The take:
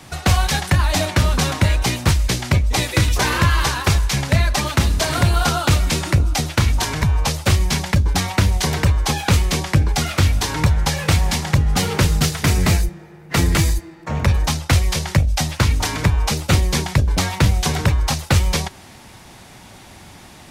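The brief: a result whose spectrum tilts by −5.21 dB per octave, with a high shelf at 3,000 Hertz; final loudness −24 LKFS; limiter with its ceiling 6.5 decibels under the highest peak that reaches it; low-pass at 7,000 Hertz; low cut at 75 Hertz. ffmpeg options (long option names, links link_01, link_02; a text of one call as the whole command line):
ffmpeg -i in.wav -af "highpass=75,lowpass=7000,highshelf=frequency=3000:gain=-6,volume=-1.5dB,alimiter=limit=-12dB:level=0:latency=1" out.wav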